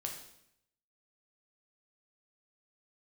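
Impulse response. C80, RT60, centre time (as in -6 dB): 9.0 dB, 0.75 s, 28 ms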